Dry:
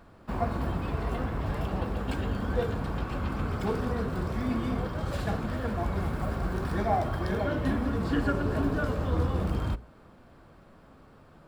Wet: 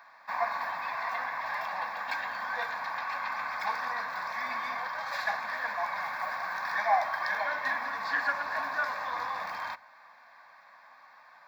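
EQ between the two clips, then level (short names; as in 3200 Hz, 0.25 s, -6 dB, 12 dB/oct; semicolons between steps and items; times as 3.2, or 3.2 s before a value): resonant high-pass 1300 Hz, resonance Q 2.1; high shelf 4300 Hz -7 dB; fixed phaser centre 2000 Hz, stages 8; +9.0 dB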